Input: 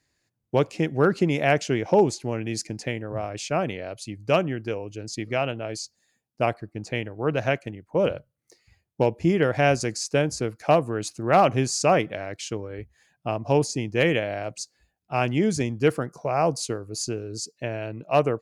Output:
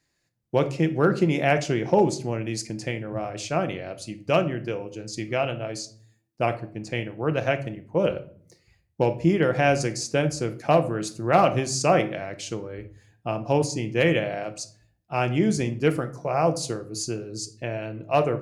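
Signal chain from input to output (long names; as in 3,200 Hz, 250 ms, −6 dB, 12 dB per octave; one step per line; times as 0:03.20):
rectangular room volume 530 cubic metres, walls furnished, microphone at 0.81 metres
level −1 dB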